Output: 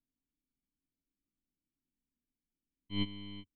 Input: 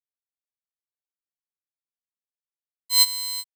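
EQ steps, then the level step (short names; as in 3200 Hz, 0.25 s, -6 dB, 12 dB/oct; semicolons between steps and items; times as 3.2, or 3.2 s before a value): vocal tract filter i; tilt -4.5 dB/oct; bell 91 Hz -14.5 dB 0.31 oct; +15.5 dB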